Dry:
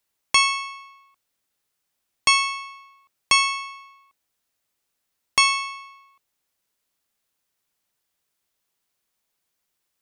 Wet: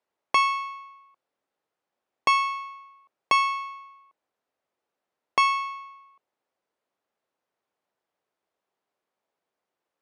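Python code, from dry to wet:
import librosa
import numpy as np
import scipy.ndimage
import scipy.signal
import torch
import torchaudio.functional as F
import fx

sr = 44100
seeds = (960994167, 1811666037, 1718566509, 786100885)

y = fx.bandpass_q(x, sr, hz=570.0, q=0.93)
y = y * librosa.db_to_amplitude(5.5)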